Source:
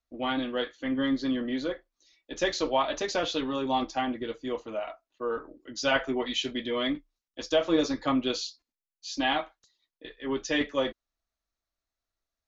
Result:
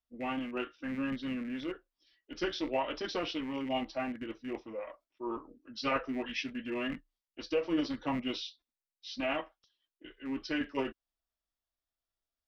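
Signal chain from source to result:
loose part that buzzes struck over −39 dBFS, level −32 dBFS
formants moved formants −3 semitones
level −6 dB

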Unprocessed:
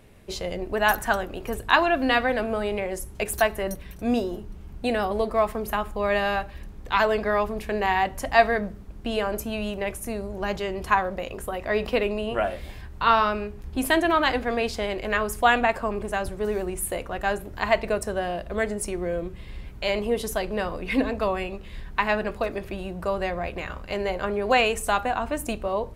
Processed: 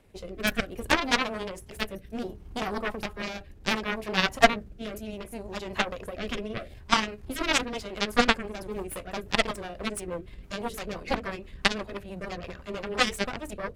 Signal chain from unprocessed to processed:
harmonic generator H 3 −21 dB, 6 −20 dB, 7 −16 dB, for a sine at −3 dBFS
time stretch by overlap-add 0.53×, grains 105 ms
rotating-speaker cabinet horn 0.65 Hz, later 6 Hz, at 0:07.00
level +5.5 dB

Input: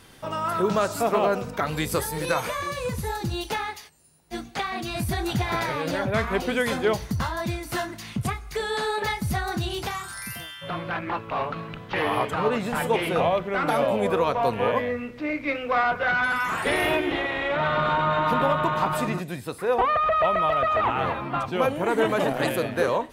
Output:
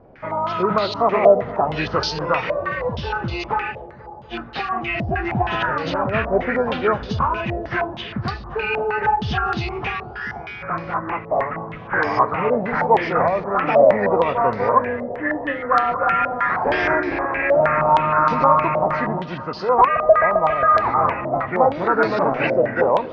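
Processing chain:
hearing-aid frequency compression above 1,200 Hz 1.5 to 1
delay with a low-pass on its return 241 ms, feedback 78%, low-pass 930 Hz, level −16 dB
low-pass on a step sequencer 6.4 Hz 640–4,300 Hz
level +2 dB

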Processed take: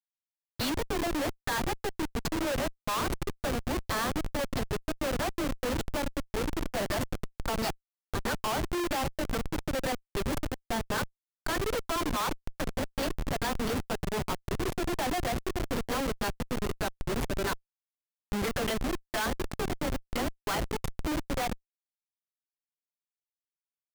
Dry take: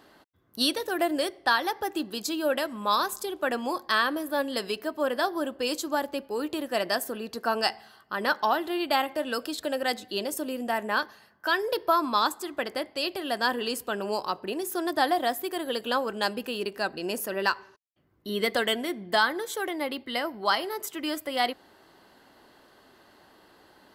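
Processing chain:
all-pass dispersion lows, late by 43 ms, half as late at 630 Hz
comparator with hysteresis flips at −26.5 dBFS

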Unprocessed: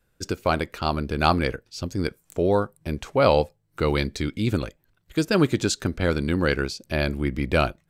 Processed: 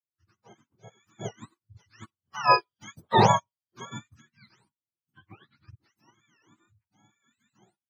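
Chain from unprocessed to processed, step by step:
frequency axis turned over on the octave scale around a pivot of 710 Hz
source passing by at 0:02.80, 6 m/s, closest 3.3 metres
expander for the loud parts 2.5 to 1, over −39 dBFS
level +5.5 dB

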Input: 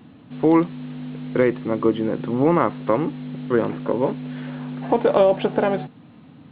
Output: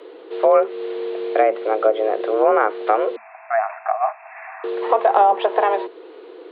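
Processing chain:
0:03.16–0:04.64: linear-phase brick-wall band-pass 420–2,500 Hz
in parallel at +0.5 dB: downward compressor, threshold −27 dBFS, peak gain reduction 15 dB
on the sum: frequency shifter +210 Hz
treble cut that deepens with the level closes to 1,900 Hz, closed at −10.5 dBFS

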